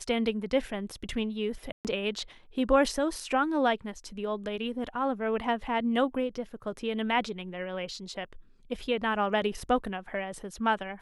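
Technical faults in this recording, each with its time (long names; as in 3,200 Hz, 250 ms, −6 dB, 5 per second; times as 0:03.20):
0:01.72–0:01.85: drop-out 128 ms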